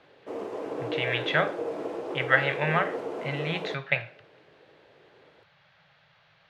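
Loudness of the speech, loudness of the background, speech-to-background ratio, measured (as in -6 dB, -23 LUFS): -28.0 LUFS, -34.5 LUFS, 6.5 dB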